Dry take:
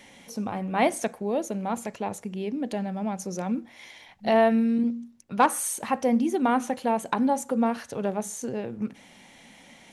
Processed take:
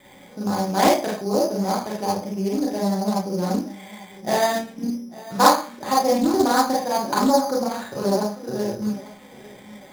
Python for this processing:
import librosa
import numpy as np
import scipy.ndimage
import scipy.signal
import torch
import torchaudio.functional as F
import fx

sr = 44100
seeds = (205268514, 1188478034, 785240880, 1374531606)

y = scipy.signal.sosfilt(scipy.signal.butter(2, 2500.0, 'lowpass', fs=sr, output='sos'), x)
y = fx.notch_comb(y, sr, f0_hz=230.0)
y = fx.wow_flutter(y, sr, seeds[0], rate_hz=2.1, depth_cents=17.0)
y = fx.echo_feedback(y, sr, ms=847, feedback_pct=30, wet_db=-19)
y = fx.rev_schroeder(y, sr, rt60_s=0.37, comb_ms=30, drr_db=-4.5)
y = np.repeat(scipy.signal.resample_poly(y, 1, 8), 8)[:len(y)]
y = fx.doppler_dist(y, sr, depth_ms=0.26)
y = y * 10.0 ** (2.0 / 20.0)